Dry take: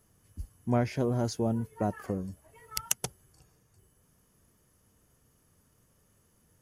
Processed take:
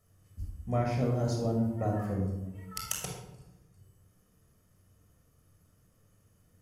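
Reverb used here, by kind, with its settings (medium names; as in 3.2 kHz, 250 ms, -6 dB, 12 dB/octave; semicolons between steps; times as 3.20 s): simulated room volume 3200 m³, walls furnished, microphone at 6.3 m; trim -7 dB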